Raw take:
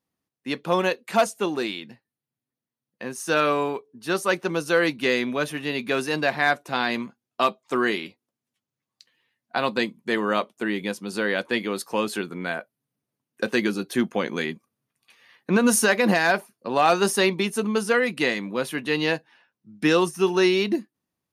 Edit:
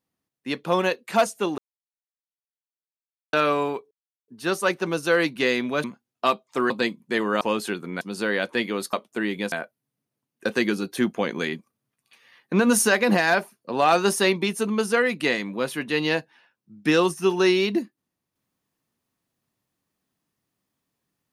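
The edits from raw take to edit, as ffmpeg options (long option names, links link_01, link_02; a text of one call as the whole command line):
ffmpeg -i in.wav -filter_complex "[0:a]asplit=10[link_01][link_02][link_03][link_04][link_05][link_06][link_07][link_08][link_09][link_10];[link_01]atrim=end=1.58,asetpts=PTS-STARTPTS,afade=type=out:start_time=1.576:duration=0.004:curve=hsin[link_11];[link_02]atrim=start=1.58:end=3.33,asetpts=PTS-STARTPTS,volume=0[link_12];[link_03]atrim=start=3.33:end=3.91,asetpts=PTS-STARTPTS,afade=type=in:duration=0.004:curve=hsin,afade=type=out:start_time=0.576:duration=0.004:curve=hsin,apad=pad_dur=0.37[link_13];[link_04]atrim=start=3.91:end=5.472,asetpts=PTS-STARTPTS,afade=type=in:duration=0.004:curve=hsin[link_14];[link_05]atrim=start=6.998:end=7.862[link_15];[link_06]atrim=start=9.668:end=10.382[link_16];[link_07]atrim=start=11.888:end=12.492[link_17];[link_08]atrim=start=10.968:end=11.892[link_18];[link_09]atrim=start=10.378:end=10.972[link_19];[link_10]atrim=start=12.488[link_20];[link_11][link_12][link_13][link_14]concat=n=4:v=0:a=1[link_21];[link_21][link_15]acrossfade=duration=0.004:curve1=hsin:curve2=hsin[link_22];[link_22][link_16]acrossfade=duration=0.004:curve1=hsin:curve2=hsin[link_23];[link_23][link_17]acrossfade=duration=0.004:curve1=hsin:curve2=hsin[link_24];[link_24][link_18]acrossfade=duration=0.004:curve1=hsin:curve2=hsin[link_25];[link_25][link_19]acrossfade=duration=0.004:curve1=hsin:curve2=hsin[link_26];[link_26][link_20]acrossfade=duration=0.004:curve1=hsin:curve2=hsin" out.wav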